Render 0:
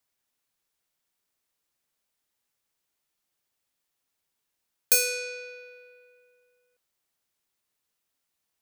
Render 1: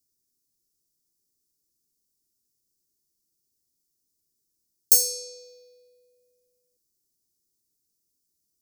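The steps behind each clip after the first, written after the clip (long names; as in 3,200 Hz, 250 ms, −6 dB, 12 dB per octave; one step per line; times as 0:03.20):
Chebyshev band-stop filter 380–5,100 Hz, order 3
level +5 dB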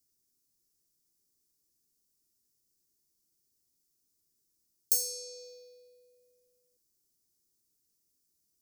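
downward compressor 1.5 to 1, threshold −42 dBFS, peak gain reduction 11 dB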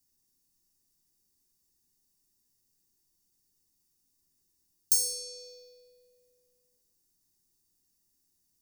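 convolution reverb RT60 0.50 s, pre-delay 3 ms, DRR 5.5 dB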